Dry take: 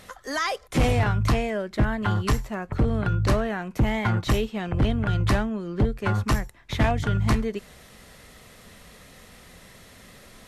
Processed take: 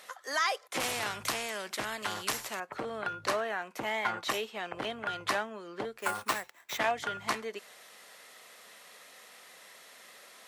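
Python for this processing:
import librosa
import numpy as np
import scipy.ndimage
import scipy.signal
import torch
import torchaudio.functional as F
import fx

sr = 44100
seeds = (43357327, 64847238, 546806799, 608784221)

y = fx.sample_hold(x, sr, seeds[0], rate_hz=9600.0, jitter_pct=0, at=(5.99, 6.78))
y = scipy.signal.sosfilt(scipy.signal.butter(2, 600.0, 'highpass', fs=sr, output='sos'), y)
y = fx.spectral_comp(y, sr, ratio=2.0, at=(0.8, 2.6))
y = F.gain(torch.from_numpy(y), -2.0).numpy()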